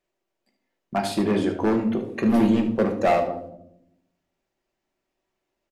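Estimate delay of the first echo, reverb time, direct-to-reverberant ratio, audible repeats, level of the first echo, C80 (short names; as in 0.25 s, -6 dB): 75 ms, 0.75 s, 3.0 dB, 1, -12.0 dB, 12.0 dB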